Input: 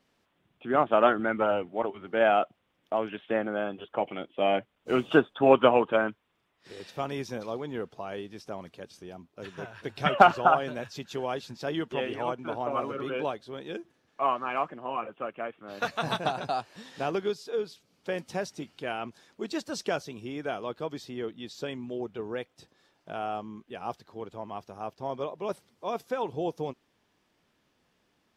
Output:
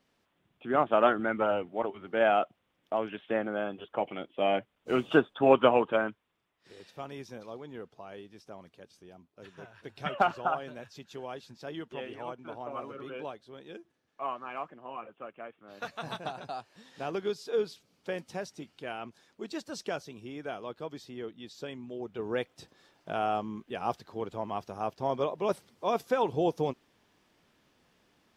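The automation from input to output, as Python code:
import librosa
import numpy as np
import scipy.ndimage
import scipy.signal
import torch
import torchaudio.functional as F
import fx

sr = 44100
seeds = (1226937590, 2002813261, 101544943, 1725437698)

y = fx.gain(x, sr, db=fx.line((5.86, -2.0), (6.93, -8.5), (16.82, -8.5), (17.61, 2.0), (18.32, -5.0), (21.98, -5.0), (22.38, 3.5)))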